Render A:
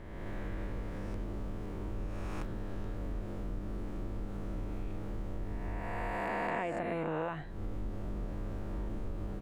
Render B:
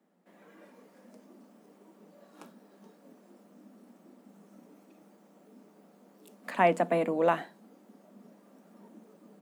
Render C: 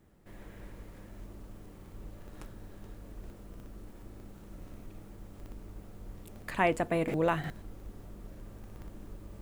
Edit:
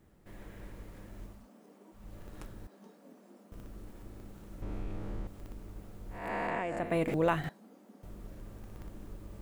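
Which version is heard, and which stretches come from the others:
C
1.37–2.03 s: from B, crossfade 0.24 s
2.67–3.52 s: from B
4.62–5.27 s: from A
6.22–6.86 s: from A, crossfade 0.24 s
7.49–8.03 s: from B

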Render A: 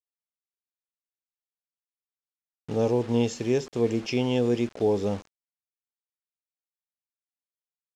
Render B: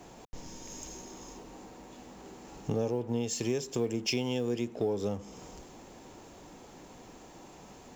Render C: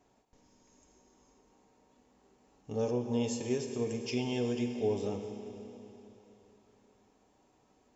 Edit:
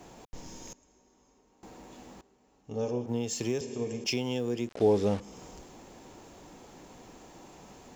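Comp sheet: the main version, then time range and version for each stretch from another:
B
0.73–1.63 s: from C
2.21–3.06 s: from C
3.61–4.04 s: from C
4.69–5.20 s: from A

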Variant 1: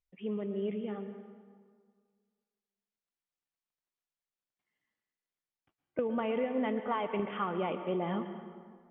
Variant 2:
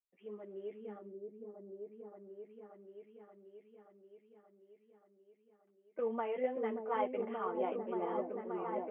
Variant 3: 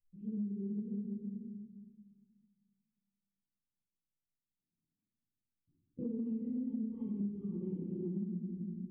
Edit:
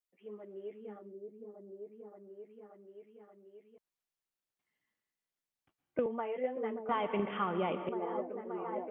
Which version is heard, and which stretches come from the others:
2
3.78–6.06 s: from 1
6.89–7.89 s: from 1
not used: 3

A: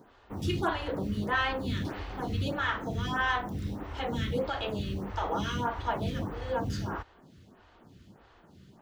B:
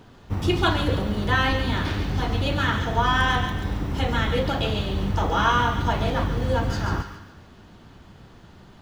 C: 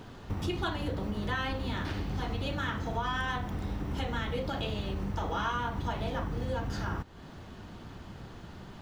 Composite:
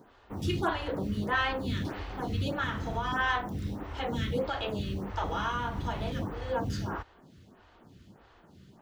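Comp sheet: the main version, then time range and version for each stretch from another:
A
2.64–3.12 s: from C
5.24–6.12 s: from C
not used: B

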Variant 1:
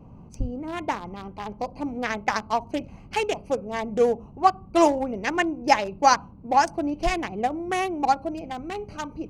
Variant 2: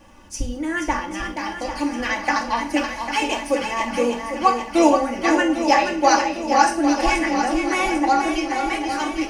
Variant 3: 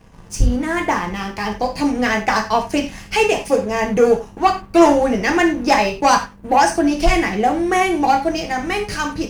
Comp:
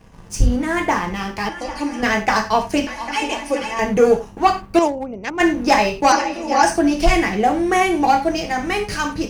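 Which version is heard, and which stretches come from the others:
3
1.49–2.03 s: from 2
2.87–3.79 s: from 2
4.79–5.40 s: from 1
6.12–6.63 s: from 2

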